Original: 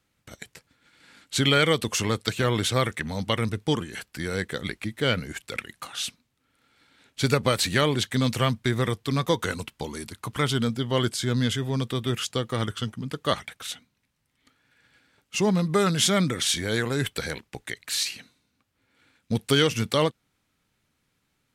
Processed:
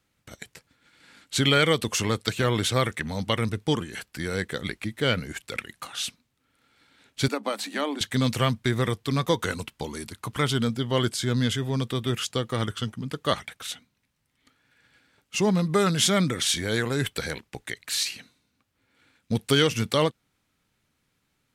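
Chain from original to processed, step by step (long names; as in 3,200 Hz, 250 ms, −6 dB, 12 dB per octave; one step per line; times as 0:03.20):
0:07.28–0:08.01: Chebyshev high-pass with heavy ripple 200 Hz, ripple 9 dB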